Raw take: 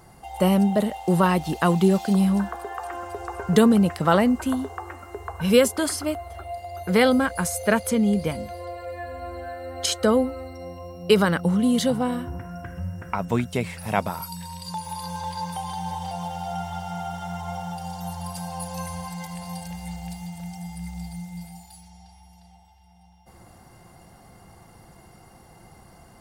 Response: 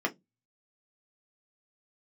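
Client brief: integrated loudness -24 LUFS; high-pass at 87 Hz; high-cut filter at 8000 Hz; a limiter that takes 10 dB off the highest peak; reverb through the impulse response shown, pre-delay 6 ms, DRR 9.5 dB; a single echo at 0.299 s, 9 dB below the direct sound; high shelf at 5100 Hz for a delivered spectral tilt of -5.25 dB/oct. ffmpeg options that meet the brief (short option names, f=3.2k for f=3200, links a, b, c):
-filter_complex "[0:a]highpass=87,lowpass=8k,highshelf=f=5.1k:g=7,alimiter=limit=-13.5dB:level=0:latency=1,aecho=1:1:299:0.355,asplit=2[a][b];[1:a]atrim=start_sample=2205,adelay=6[c];[b][c]afir=irnorm=-1:irlink=0,volume=-18dB[d];[a][d]amix=inputs=2:normalize=0,volume=1.5dB"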